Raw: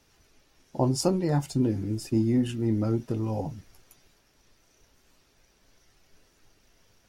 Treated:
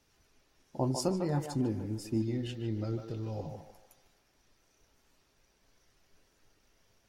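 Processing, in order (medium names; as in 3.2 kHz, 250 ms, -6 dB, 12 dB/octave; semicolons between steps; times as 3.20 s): 2.22–3.49 s: fifteen-band graphic EQ 250 Hz -7 dB, 1 kHz -7 dB, 4 kHz +9 dB, 10 kHz -10 dB; band-passed feedback delay 150 ms, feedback 44%, band-pass 950 Hz, level -4 dB; trim -6.5 dB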